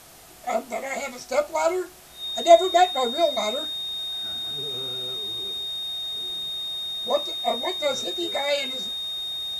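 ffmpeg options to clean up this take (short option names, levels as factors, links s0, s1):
-af "adeclick=t=4,bandreject=f=3700:w=30,afwtdn=0.004"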